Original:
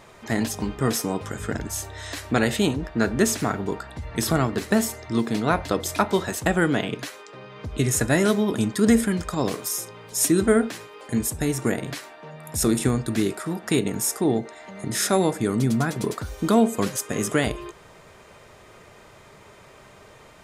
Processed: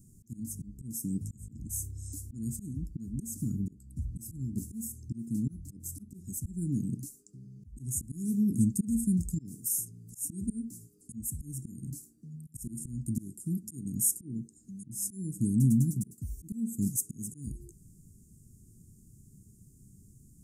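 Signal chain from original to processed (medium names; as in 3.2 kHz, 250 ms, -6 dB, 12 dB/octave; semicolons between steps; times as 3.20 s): slow attack 355 ms; inverse Chebyshev band-stop 550–3600 Hz, stop band 50 dB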